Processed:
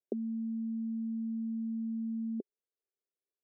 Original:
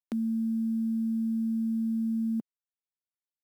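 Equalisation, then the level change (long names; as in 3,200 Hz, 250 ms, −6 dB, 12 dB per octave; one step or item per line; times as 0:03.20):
high-pass with resonance 400 Hz, resonance Q 4.9
Butterworth low-pass 660 Hz 48 dB per octave
0.0 dB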